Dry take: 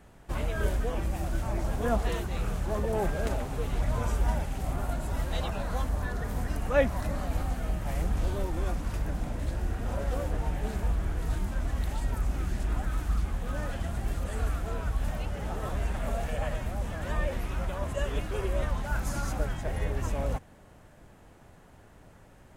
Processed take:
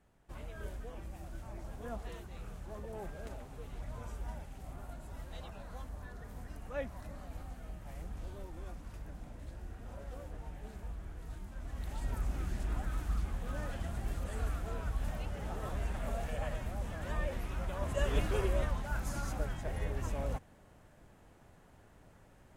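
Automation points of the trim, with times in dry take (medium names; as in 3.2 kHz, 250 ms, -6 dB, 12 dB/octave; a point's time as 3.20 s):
11.50 s -15 dB
12.10 s -6 dB
17.64 s -6 dB
18.25 s +1 dB
18.84 s -6 dB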